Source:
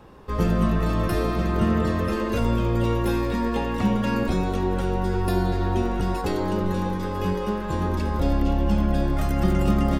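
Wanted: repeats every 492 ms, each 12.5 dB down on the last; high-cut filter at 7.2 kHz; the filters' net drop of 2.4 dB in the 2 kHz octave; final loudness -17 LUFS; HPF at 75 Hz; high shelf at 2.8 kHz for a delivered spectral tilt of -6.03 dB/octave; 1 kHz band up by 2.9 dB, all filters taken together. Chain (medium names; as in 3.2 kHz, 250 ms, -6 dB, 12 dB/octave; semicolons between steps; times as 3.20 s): high-pass 75 Hz; low-pass 7.2 kHz; peaking EQ 1 kHz +4.5 dB; peaking EQ 2 kHz -7 dB; treble shelf 2.8 kHz +5 dB; feedback delay 492 ms, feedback 24%, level -12.5 dB; trim +7.5 dB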